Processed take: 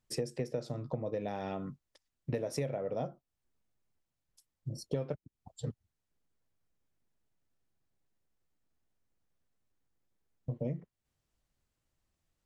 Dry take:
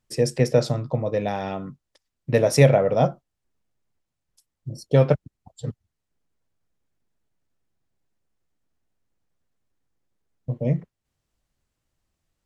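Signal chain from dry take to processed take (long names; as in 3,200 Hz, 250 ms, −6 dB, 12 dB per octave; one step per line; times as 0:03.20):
dynamic equaliser 330 Hz, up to +6 dB, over −33 dBFS, Q 0.96
downward compressor 8 to 1, threshold −28 dBFS, peak gain reduction 20.5 dB
level −4.5 dB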